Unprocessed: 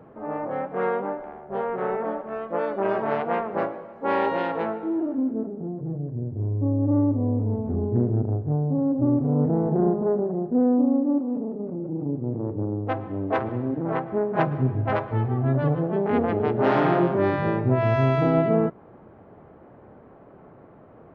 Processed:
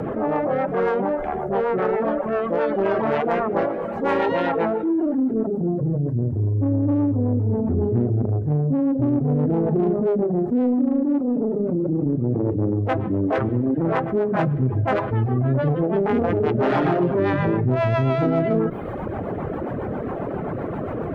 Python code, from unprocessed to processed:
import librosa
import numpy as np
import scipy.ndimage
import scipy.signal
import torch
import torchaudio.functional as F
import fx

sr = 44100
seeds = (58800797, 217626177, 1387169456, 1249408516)

p1 = fx.dereverb_blind(x, sr, rt60_s=0.74)
p2 = 10.0 ** (-26.0 / 20.0) * np.tanh(p1 / 10.0 ** (-26.0 / 20.0))
p3 = p1 + (p2 * librosa.db_to_amplitude(-6.0))
p4 = fx.rotary(p3, sr, hz=7.5)
y = fx.env_flatten(p4, sr, amount_pct=70)